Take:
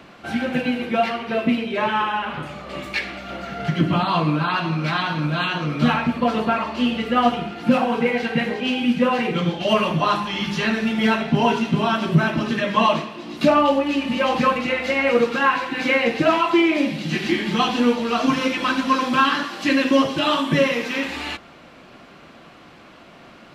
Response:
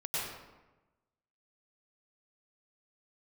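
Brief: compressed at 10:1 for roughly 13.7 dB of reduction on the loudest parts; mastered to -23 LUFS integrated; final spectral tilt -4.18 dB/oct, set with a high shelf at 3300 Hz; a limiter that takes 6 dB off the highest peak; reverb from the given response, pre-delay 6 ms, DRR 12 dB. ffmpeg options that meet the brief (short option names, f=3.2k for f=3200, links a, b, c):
-filter_complex "[0:a]highshelf=f=3.3k:g=-6,acompressor=threshold=-26dB:ratio=10,alimiter=limit=-21.5dB:level=0:latency=1,asplit=2[a][b];[1:a]atrim=start_sample=2205,adelay=6[c];[b][c]afir=irnorm=-1:irlink=0,volume=-17.5dB[d];[a][d]amix=inputs=2:normalize=0,volume=8dB"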